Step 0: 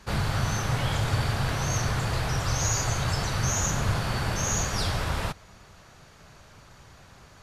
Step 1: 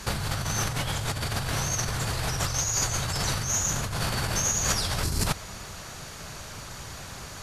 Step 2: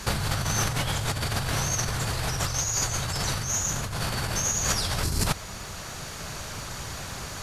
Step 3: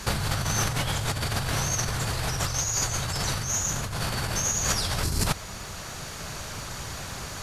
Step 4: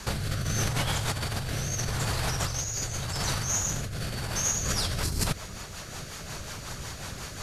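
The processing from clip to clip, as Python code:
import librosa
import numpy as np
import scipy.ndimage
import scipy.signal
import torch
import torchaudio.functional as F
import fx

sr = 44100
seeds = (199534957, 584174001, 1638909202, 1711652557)

y1 = fx.spec_box(x, sr, start_s=5.03, length_s=0.23, low_hz=450.0, high_hz=4000.0, gain_db=-11)
y1 = fx.over_compress(y1, sr, threshold_db=-33.0, ratio=-1.0)
y1 = fx.peak_eq(y1, sr, hz=11000.0, db=9.5, octaves=2.1)
y1 = y1 * 10.0 ** (3.5 / 20.0)
y2 = fx.rider(y1, sr, range_db=4, speed_s=2.0)
y2 = fx.quant_dither(y2, sr, seeds[0], bits=12, dither='triangular')
y3 = y2
y4 = fx.rotary_switch(y3, sr, hz=0.8, then_hz=5.5, switch_at_s=4.2)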